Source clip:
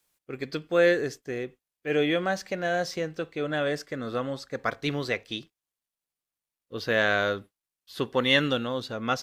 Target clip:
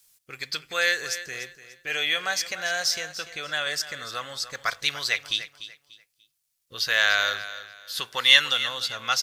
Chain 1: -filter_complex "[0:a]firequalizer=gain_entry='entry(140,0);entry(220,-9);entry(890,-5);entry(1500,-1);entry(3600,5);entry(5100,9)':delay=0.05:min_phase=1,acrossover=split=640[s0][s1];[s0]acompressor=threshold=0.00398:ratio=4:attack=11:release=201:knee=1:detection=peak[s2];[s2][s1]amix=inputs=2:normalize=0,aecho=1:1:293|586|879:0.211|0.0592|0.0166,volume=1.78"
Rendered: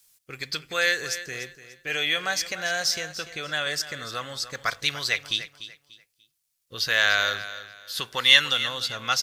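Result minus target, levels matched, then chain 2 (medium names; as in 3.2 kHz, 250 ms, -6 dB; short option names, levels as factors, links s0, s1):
compression: peak gain reduction -6.5 dB
-filter_complex "[0:a]firequalizer=gain_entry='entry(140,0);entry(220,-9);entry(890,-5);entry(1500,-1);entry(3600,5);entry(5100,9)':delay=0.05:min_phase=1,acrossover=split=640[s0][s1];[s0]acompressor=threshold=0.0015:ratio=4:attack=11:release=201:knee=1:detection=peak[s2];[s2][s1]amix=inputs=2:normalize=0,aecho=1:1:293|586|879:0.211|0.0592|0.0166,volume=1.78"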